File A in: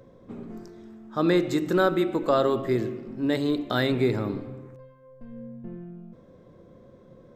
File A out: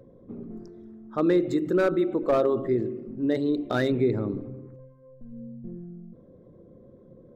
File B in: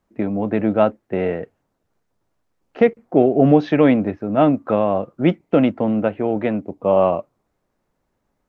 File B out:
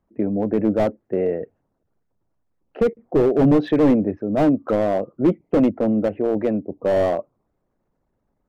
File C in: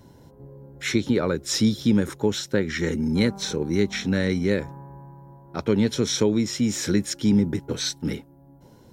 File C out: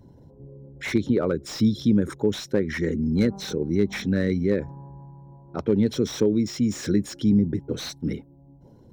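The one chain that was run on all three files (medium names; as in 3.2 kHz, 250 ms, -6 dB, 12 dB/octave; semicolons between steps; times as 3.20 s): resonances exaggerated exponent 1.5; slew-rate limiter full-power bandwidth 96 Hz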